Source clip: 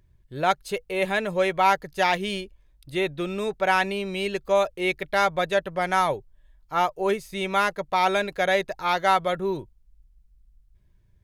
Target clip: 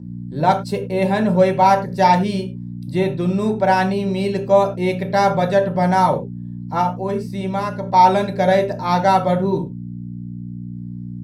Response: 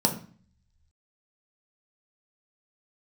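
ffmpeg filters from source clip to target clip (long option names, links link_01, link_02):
-filter_complex "[0:a]asettb=1/sr,asplit=3[link_01][link_02][link_03];[link_01]atrim=end=6.814[link_04];[link_02]atrim=start=6.81:end=7.94,asetpts=PTS-STARTPTS,afade=type=in:duration=0.004:curve=qsin,afade=type=out:start_time=1.126:duration=0.004:curve=qsin,acompressor=threshold=-37dB:ratio=1.5[link_05];[link_03]atrim=start=7.936[link_06];[link_04][link_05]acrossfade=duration=0.004:curve1=hsin:curve2=qsin[link_07];[link_07][link_06]acrossfade=duration=0.004:curve1=qsin:curve2=hsin,aeval=exprs='val(0)+0.0126*(sin(2*PI*60*n/s)+sin(2*PI*2*60*n/s)/2+sin(2*PI*3*60*n/s)/3+sin(2*PI*4*60*n/s)/4+sin(2*PI*5*60*n/s)/5)':channel_layout=same[link_08];[1:a]atrim=start_sample=2205,afade=type=out:start_time=0.16:duration=0.01,atrim=end_sample=7497[link_09];[link_08][link_09]afir=irnorm=-1:irlink=0,volume=-8dB"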